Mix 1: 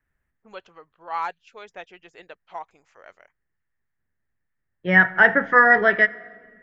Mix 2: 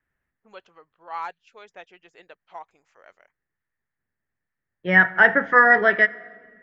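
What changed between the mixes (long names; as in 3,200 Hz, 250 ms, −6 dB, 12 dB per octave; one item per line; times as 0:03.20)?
first voice −4.0 dB
master: add low-shelf EQ 100 Hz −8.5 dB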